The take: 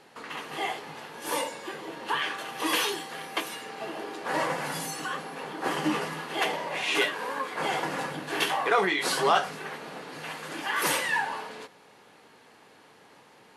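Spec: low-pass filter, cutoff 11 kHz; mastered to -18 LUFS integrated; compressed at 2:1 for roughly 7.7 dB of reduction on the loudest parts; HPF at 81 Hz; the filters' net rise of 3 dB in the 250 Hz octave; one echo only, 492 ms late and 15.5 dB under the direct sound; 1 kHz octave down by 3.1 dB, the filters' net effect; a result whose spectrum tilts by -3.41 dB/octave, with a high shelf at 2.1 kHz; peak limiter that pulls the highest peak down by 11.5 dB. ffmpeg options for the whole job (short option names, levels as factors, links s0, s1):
-af "highpass=81,lowpass=11000,equalizer=f=250:t=o:g=4.5,equalizer=f=1000:t=o:g=-6,highshelf=f=2100:g=7.5,acompressor=threshold=0.0224:ratio=2,alimiter=level_in=1.68:limit=0.0631:level=0:latency=1,volume=0.596,aecho=1:1:492:0.168,volume=8.91"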